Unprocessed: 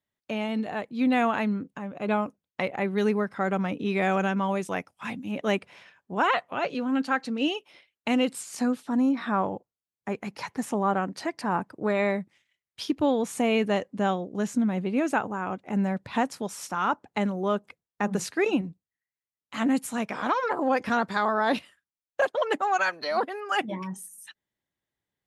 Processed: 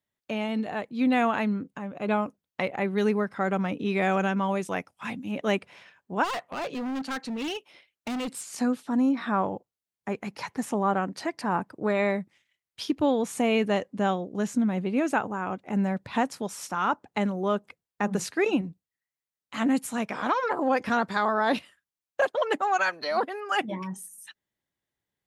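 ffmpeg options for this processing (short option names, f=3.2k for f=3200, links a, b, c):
-filter_complex "[0:a]asplit=3[a][b][c];[a]afade=t=out:st=6.23:d=0.02[d];[b]asoftclip=type=hard:threshold=-29dB,afade=t=in:st=6.23:d=0.02,afade=t=out:st=8.44:d=0.02[e];[c]afade=t=in:st=8.44:d=0.02[f];[d][e][f]amix=inputs=3:normalize=0"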